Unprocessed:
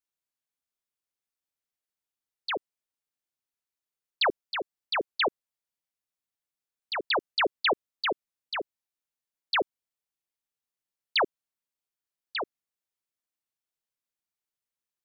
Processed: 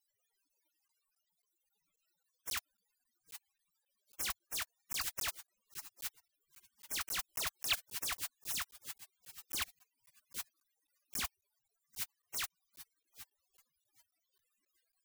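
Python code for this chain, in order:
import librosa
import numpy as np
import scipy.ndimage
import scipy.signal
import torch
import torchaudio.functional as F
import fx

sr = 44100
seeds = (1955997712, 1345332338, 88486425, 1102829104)

p1 = x + 0.5 * 10.0 ** (-41.5 / 20.0) * np.sign(x)
p2 = p1 + fx.echo_filtered(p1, sr, ms=786, feedback_pct=42, hz=2700.0, wet_db=-14, dry=0)
p3 = fx.spec_gate(p2, sr, threshold_db=-30, keep='weak')
p4 = fx.buffer_crackle(p3, sr, first_s=0.88, period_s=0.27, block=512, kind='zero')
y = F.gain(torch.from_numpy(p4), 17.5).numpy()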